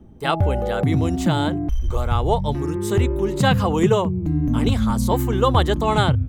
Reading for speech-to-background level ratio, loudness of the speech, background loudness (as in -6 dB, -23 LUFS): -1.5 dB, -24.0 LUFS, -22.5 LUFS